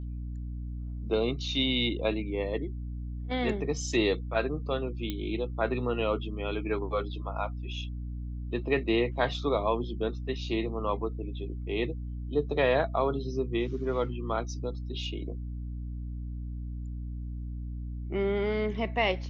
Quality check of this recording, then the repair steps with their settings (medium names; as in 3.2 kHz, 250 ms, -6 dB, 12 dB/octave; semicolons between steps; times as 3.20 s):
hum 60 Hz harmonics 5 -36 dBFS
5.10 s: pop -19 dBFS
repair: de-click; de-hum 60 Hz, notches 5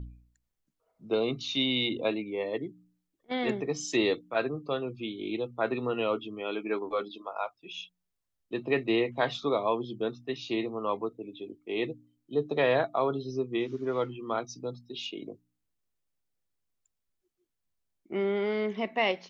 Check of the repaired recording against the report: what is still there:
nothing left